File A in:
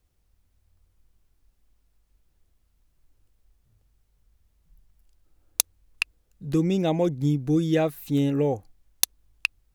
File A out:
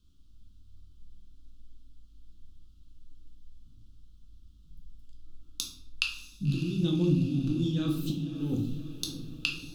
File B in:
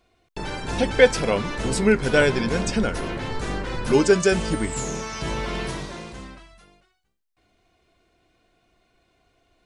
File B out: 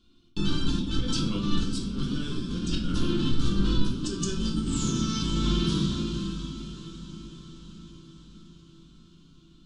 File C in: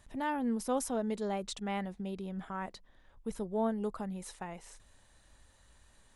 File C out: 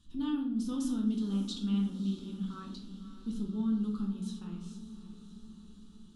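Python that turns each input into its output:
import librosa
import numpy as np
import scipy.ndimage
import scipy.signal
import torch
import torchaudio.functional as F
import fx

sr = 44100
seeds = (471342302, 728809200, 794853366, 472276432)

p1 = fx.curve_eq(x, sr, hz=(150.0, 270.0, 430.0, 670.0, 1300.0, 2000.0, 3200.0, 13000.0), db=(0, 8, -12, -26, -4, -23, 5, -12))
p2 = fx.over_compress(p1, sr, threshold_db=-29.0, ratio=-1.0)
p3 = p2 + fx.echo_diffused(p2, sr, ms=588, feedback_pct=60, wet_db=-13.0, dry=0)
p4 = fx.room_shoebox(p3, sr, seeds[0], volume_m3=130.0, walls='mixed', distance_m=0.83)
y = p4 * 10.0 ** (-3.5 / 20.0)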